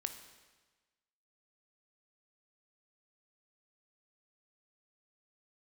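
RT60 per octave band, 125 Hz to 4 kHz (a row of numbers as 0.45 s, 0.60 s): 1.3 s, 1.3 s, 1.3 s, 1.3 s, 1.3 s, 1.2 s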